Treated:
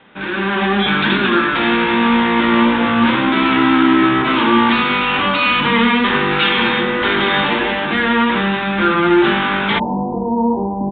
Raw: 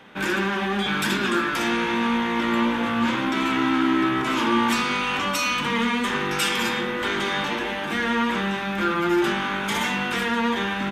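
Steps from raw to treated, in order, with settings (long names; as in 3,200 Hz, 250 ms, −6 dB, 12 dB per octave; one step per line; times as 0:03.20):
automatic gain control gain up to 11.5 dB
Butterworth low-pass 3,900 Hz 96 dB per octave, from 0:09.78 970 Hz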